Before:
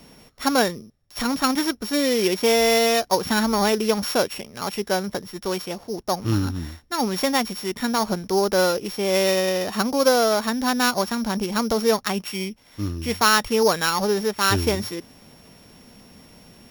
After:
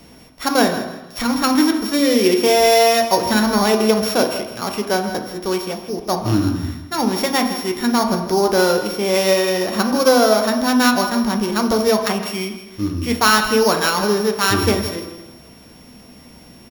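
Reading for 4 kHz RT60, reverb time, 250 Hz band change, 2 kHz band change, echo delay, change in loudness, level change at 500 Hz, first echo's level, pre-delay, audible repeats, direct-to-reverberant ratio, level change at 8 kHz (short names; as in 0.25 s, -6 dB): 1.1 s, 1.1 s, +6.0 dB, +4.0 dB, 0.162 s, +4.5 dB, +4.5 dB, -13.0 dB, 3 ms, 3, 3.5 dB, +3.5 dB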